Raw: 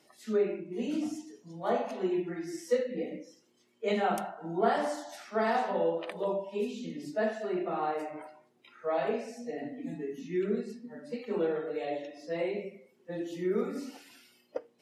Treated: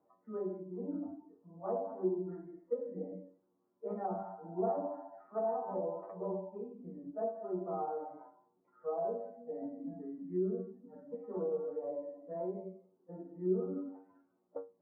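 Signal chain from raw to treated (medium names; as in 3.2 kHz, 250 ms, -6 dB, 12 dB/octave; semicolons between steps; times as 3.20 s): steep low-pass 1.2 kHz 36 dB/octave; inharmonic resonator 92 Hz, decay 0.29 s, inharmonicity 0.002; low-pass that closes with the level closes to 830 Hz, closed at -35.5 dBFS; trim +4 dB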